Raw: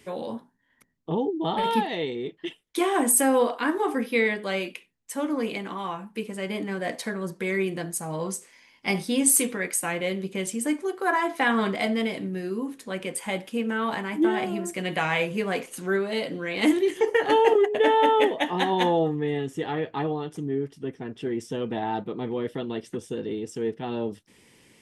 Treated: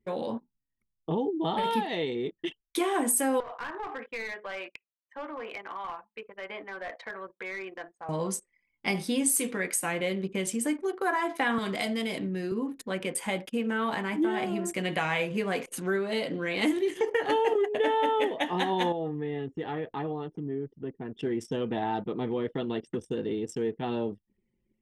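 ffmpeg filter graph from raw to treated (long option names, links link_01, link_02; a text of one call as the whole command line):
ffmpeg -i in.wav -filter_complex "[0:a]asettb=1/sr,asplit=3[link_01][link_02][link_03];[link_01]atrim=end=3.404[link_04];[link_02]atrim=start=3.4:end=8.09,asetpts=PTS-STARTPTS,afade=type=in:duration=0.004:curve=qsin,afade=type=out:start_time=4.686:duration=0.004:curve=qsin,highpass=730,lowpass=2100,aeval=exprs='clip(val(0),-1,0.0282)':channel_layout=same,acompressor=threshold=-35dB:ratio=2.5:attack=3.2:release=140:knee=1:detection=peak[link_05];[link_03]atrim=start=8.086[link_06];[link_04][link_05]acrossfade=duration=0.004:curve1=hsin:curve2=qsin[link_07];[link_07][link_06]acrossfade=duration=0.004:curve1=qsin:curve2=hsin,asettb=1/sr,asplit=3[link_08][link_09][link_10];[link_08]atrim=end=11.584[link_11];[link_09]atrim=start=11.58:end=12.52,asetpts=PTS-STARTPTS,afade=type=in:duration=0.004:curve=qsin,afade=type=out:start_time=0.936:duration=0.004:curve=qsin,highshelf=frequency=4300:gain=5,acrossover=split=130|3000[link_12][link_13][link_14];[link_13]acompressor=threshold=-29dB:ratio=2.5:attack=3.2:release=140:knee=2.83:detection=peak[link_15];[link_12][link_15][link_14]amix=inputs=3:normalize=0[link_16];[link_10]atrim=start=12.516[link_17];[link_11][link_16]acrossfade=duration=0.004:curve1=hsin:curve2=qsin[link_18];[link_18][link_17]acrossfade=duration=0.004:curve1=qsin:curve2=hsin,asettb=1/sr,asplit=3[link_19][link_20][link_21];[link_19]atrim=end=18.924[link_22];[link_20]atrim=start=18.92:end=21.15,asetpts=PTS-STARTPTS,afade=type=in:duration=0.004:curve=qsin,afade=type=out:start_time=2.226:duration=0.004:curve=qsin,highshelf=frequency=5700:gain=-11,acompressor=threshold=-40dB:ratio=1.5:attack=3.2:release=140:knee=1:detection=peak[link_23];[link_21]atrim=start=21.146[link_24];[link_22][link_23]acrossfade=duration=0.004:curve1=hsin:curve2=qsin[link_25];[link_25][link_24]acrossfade=duration=0.004:curve1=qsin:curve2=hsin,anlmdn=0.0631,acompressor=threshold=-29dB:ratio=2,volume=1dB" out.wav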